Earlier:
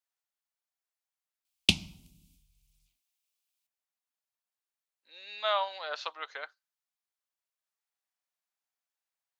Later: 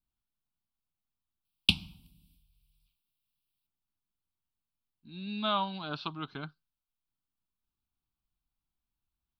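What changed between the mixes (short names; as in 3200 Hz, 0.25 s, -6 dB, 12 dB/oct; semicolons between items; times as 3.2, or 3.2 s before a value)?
speech: remove HPF 710 Hz 24 dB/oct; master: add fixed phaser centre 1900 Hz, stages 6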